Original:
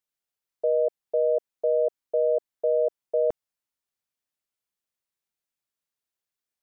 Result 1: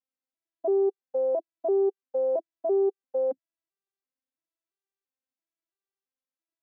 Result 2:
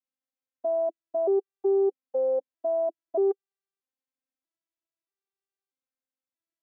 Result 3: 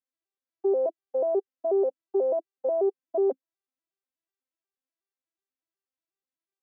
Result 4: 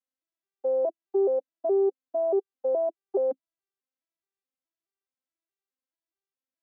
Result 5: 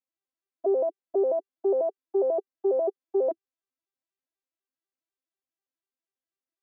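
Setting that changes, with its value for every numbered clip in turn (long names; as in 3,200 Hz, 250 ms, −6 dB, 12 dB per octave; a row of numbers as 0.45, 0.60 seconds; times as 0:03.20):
vocoder with an arpeggio as carrier, a note every: 336, 634, 122, 211, 82 milliseconds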